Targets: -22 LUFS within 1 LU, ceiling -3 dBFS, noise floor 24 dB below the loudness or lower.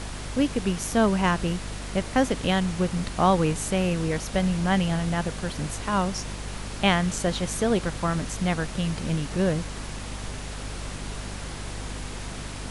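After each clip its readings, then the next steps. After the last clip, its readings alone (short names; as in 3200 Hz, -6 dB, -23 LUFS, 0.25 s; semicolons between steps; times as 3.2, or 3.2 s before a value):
hum 50 Hz; harmonics up to 250 Hz; hum level -34 dBFS; noise floor -36 dBFS; noise floor target -51 dBFS; loudness -26.5 LUFS; peak -7.0 dBFS; loudness target -22.0 LUFS
-> de-hum 50 Hz, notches 5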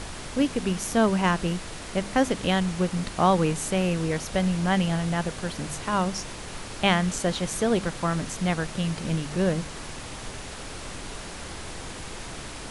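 hum none; noise floor -38 dBFS; noise floor target -50 dBFS
-> noise print and reduce 12 dB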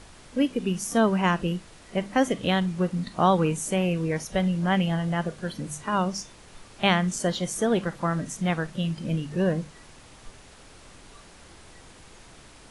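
noise floor -50 dBFS; loudness -26.0 LUFS; peak -8.5 dBFS; loudness target -22.0 LUFS
-> gain +4 dB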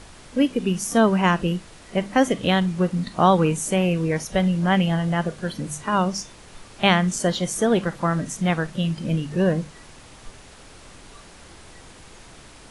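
loudness -22.0 LUFS; peak -4.5 dBFS; noise floor -46 dBFS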